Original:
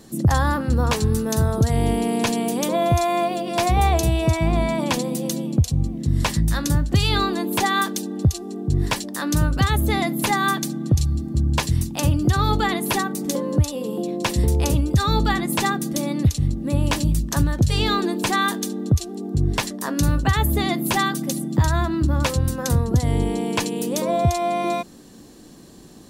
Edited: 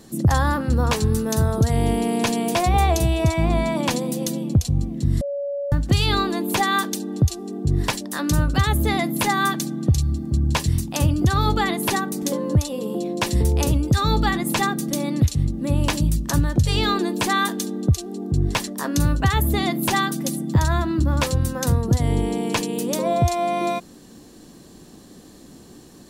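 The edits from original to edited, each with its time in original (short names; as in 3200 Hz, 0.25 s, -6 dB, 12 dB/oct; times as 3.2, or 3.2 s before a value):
2.55–3.58 cut
6.24–6.75 bleep 566 Hz -23.5 dBFS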